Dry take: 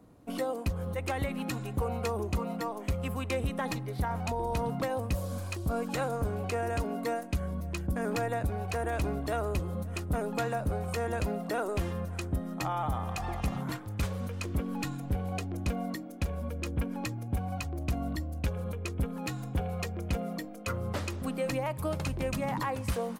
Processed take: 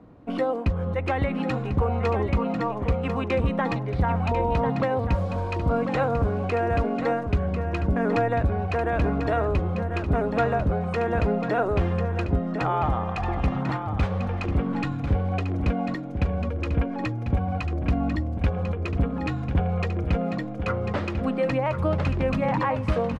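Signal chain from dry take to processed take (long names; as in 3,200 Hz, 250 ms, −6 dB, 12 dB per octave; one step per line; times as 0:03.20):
low-pass filter 2,600 Hz 12 dB per octave
single-tap delay 1,045 ms −8 dB
level +7.5 dB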